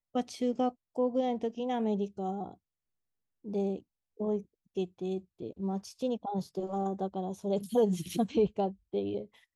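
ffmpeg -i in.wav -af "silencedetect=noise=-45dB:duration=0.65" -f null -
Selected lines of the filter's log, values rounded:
silence_start: 2.54
silence_end: 3.45 | silence_duration: 0.91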